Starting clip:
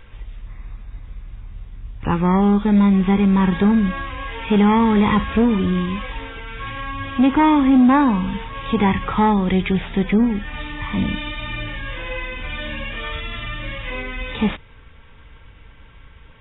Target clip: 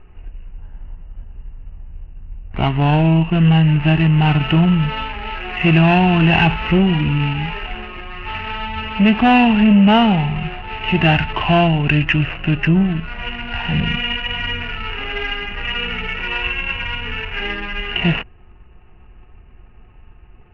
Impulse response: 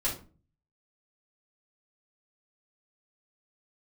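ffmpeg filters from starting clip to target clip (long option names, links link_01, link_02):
-af "adynamicsmooth=sensitivity=3.5:basefreq=860,asetrate=35236,aresample=44100,lowpass=frequency=2800:width_type=q:width=11,volume=1.5dB"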